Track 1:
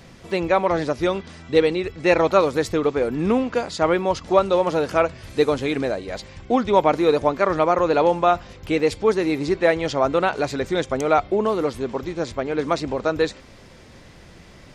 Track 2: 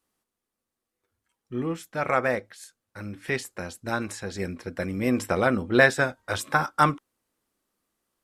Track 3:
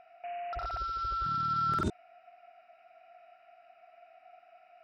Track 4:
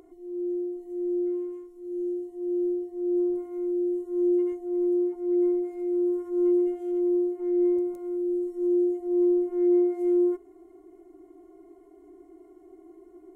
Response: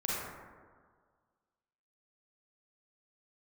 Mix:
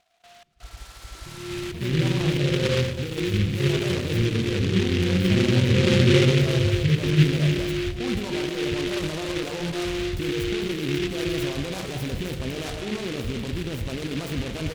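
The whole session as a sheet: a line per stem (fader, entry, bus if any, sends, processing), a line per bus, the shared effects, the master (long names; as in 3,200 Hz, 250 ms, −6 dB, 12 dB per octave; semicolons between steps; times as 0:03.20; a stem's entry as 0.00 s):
−10.5 dB, 1.50 s, bus B, send −11.5 dB, downward compressor, threshold −18 dBFS, peak gain reduction 8 dB
0.0 dB, 0.30 s, bus B, send −3.5 dB, Chebyshev low-pass with heavy ripple 540 Hz, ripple 9 dB
−11.5 dB, 0.00 s, bus A, no send, no processing
−4.5 dB, 1.15 s, bus A, send −21 dB, no processing
bus A: 0.0 dB, gate pattern "xxxxx..xxxxxxxx" 175 BPM −24 dB; brickwall limiter −28.5 dBFS, peak gain reduction 8 dB
bus B: 0.0 dB, compressor whose output falls as the input rises −38 dBFS, ratio −1; brickwall limiter −29 dBFS, peak gain reduction 6.5 dB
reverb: on, RT60 1.7 s, pre-delay 33 ms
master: bass and treble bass +14 dB, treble −3 dB; short delay modulated by noise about 2,500 Hz, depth 0.17 ms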